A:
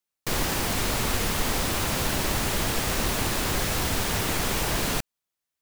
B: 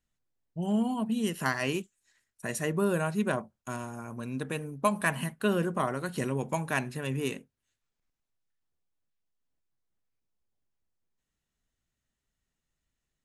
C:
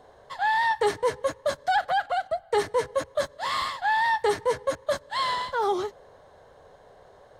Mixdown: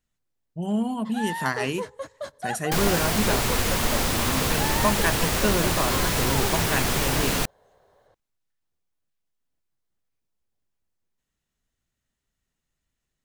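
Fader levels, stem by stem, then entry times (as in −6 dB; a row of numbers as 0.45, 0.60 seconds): +2.0, +2.5, −8.5 decibels; 2.45, 0.00, 0.75 seconds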